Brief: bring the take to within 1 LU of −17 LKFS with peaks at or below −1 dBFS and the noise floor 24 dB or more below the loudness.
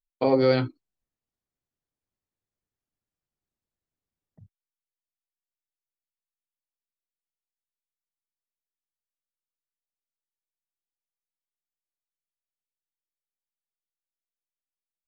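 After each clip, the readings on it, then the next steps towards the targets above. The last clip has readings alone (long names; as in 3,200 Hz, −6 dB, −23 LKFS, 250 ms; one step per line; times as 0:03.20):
integrated loudness −23.5 LKFS; sample peak −9.5 dBFS; target loudness −17.0 LKFS
→ level +6.5 dB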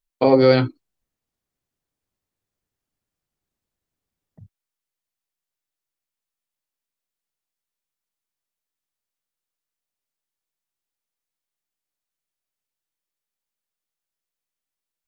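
integrated loudness −17.0 LKFS; sample peak −3.0 dBFS; background noise floor −88 dBFS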